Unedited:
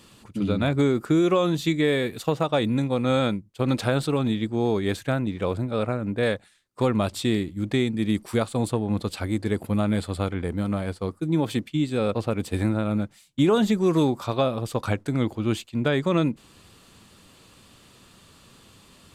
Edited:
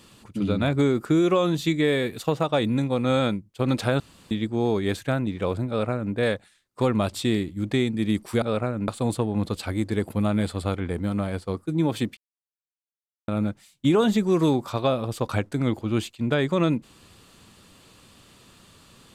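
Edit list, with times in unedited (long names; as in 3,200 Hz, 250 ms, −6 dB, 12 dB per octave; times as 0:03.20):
0:04.00–0:04.31: fill with room tone
0:05.68–0:06.14: duplicate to 0:08.42
0:11.71–0:12.82: silence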